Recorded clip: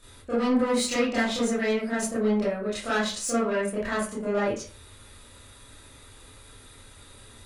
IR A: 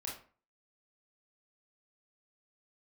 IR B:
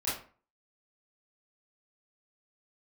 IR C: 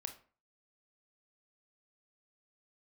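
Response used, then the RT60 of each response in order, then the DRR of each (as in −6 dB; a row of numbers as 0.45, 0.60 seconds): B; 0.40, 0.40, 0.40 seconds; −3.5, −11.0, 6.0 decibels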